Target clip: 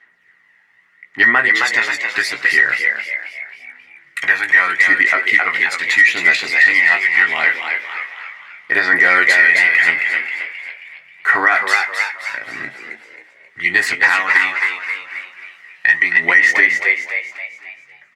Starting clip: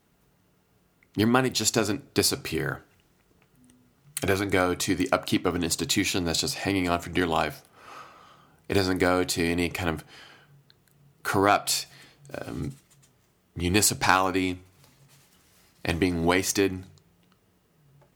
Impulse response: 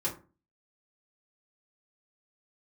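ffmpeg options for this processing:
-filter_complex "[0:a]asettb=1/sr,asplit=3[link_01][link_02][link_03];[link_01]atrim=end=8.934[link_04];[link_02]atrim=start=8.93:end=9.37,asetpts=PTS-STARTPTS,afade=type=in:duration=0.004:curve=qsin,afade=type=out:start_time=0.436:duration=0.004:curve=qsin,acontrast=83[link_05];[link_03]atrim=start=9.366[link_06];[link_04][link_05]acrossfade=duration=0.004:curve1=hsin:curve2=qsin[link_07];[link_07][link_06]acrossfade=duration=0.004:curve1=qsin:curve2=hsin,asplit=2[link_08][link_09];[link_09]aecho=0:1:256|512|768|1024:0.112|0.0583|0.0303|0.0158[link_10];[link_08][link_10]amix=inputs=2:normalize=0,aphaser=in_gain=1:out_gain=1:delay=1.2:decay=0.5:speed=0.79:type=sinusoidal,bandpass=frequency=1900:width_type=q:width=19:csg=0,asplit=2[link_11][link_12];[link_12]adelay=17,volume=-7dB[link_13];[link_11][link_13]amix=inputs=2:normalize=0,asplit=2[link_14][link_15];[link_15]asplit=5[link_16][link_17][link_18][link_19][link_20];[link_16]adelay=267,afreqshift=89,volume=-6dB[link_21];[link_17]adelay=534,afreqshift=178,volume=-12.9dB[link_22];[link_18]adelay=801,afreqshift=267,volume=-19.9dB[link_23];[link_19]adelay=1068,afreqshift=356,volume=-26.8dB[link_24];[link_20]adelay=1335,afreqshift=445,volume=-33.7dB[link_25];[link_21][link_22][link_23][link_24][link_25]amix=inputs=5:normalize=0[link_26];[link_14][link_26]amix=inputs=2:normalize=0,acontrast=38,aeval=exprs='0.141*(cos(1*acos(clip(val(0)/0.141,-1,1)))-cos(1*PI/2))+0.002*(cos(5*acos(clip(val(0)/0.141,-1,1)))-cos(5*PI/2))':channel_layout=same,alimiter=level_in=25.5dB:limit=-1dB:release=50:level=0:latency=1,volume=-1dB"

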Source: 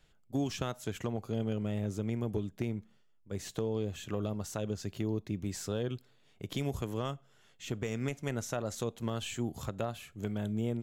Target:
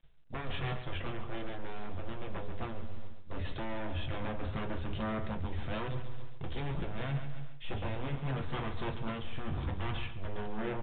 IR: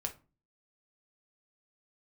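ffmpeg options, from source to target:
-filter_complex "[0:a]asplit=2[link_01][link_02];[link_02]aeval=exprs='clip(val(0),-1,0.0119)':channel_layout=same,volume=-11dB[link_03];[link_01][link_03]amix=inputs=2:normalize=0,agate=range=-33dB:threshold=-51dB:ratio=3:detection=peak,asubboost=boost=3.5:cutoff=100,aeval=exprs='0.0178*(abs(mod(val(0)/0.0178+3,4)-2)-1)':channel_layout=same[link_04];[1:a]atrim=start_sample=2205[link_05];[link_04][link_05]afir=irnorm=-1:irlink=0,acontrast=85,lowshelf=frequency=61:gain=9,aecho=1:1:138|276|414|552:0.316|0.13|0.0532|0.0218,areverse,acompressor=threshold=-30dB:ratio=10,areverse" -ar 8000 -c:a pcm_mulaw

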